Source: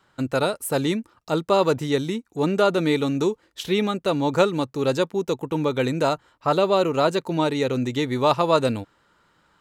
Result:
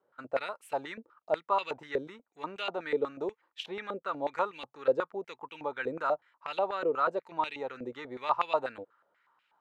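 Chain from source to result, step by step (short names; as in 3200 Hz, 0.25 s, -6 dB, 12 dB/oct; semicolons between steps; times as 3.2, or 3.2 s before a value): stepped band-pass 8.2 Hz 500–2600 Hz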